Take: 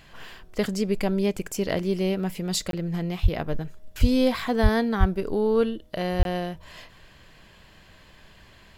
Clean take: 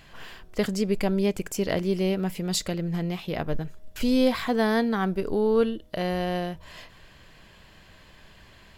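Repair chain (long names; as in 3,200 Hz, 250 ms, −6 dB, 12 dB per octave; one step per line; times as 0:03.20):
high-pass at the plosives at 0:03.22/0:04.00/0:04.62/0:04.99/0:06.18
repair the gap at 0:02.71/0:06.23, 22 ms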